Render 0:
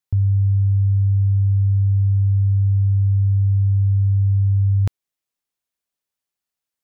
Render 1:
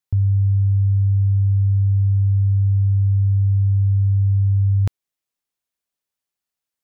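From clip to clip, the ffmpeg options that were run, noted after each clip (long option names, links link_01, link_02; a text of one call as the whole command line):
ffmpeg -i in.wav -af anull out.wav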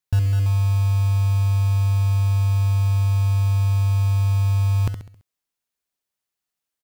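ffmpeg -i in.wav -filter_complex "[0:a]asplit=2[link_01][link_02];[link_02]aecho=0:1:67|134|201|268|335:0.398|0.179|0.0806|0.0363|0.0163[link_03];[link_01][link_03]amix=inputs=2:normalize=0,acrusher=bits=5:mode=log:mix=0:aa=0.000001" out.wav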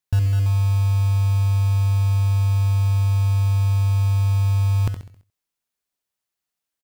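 ffmpeg -i in.wav -af "aecho=1:1:89:0.133" out.wav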